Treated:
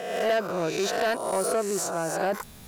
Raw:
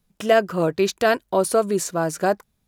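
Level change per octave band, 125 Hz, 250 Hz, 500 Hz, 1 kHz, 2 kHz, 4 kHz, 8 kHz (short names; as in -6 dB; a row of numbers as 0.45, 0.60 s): -8.5, -7.5, -6.0, -5.0, -5.0, -2.5, -1.5 dB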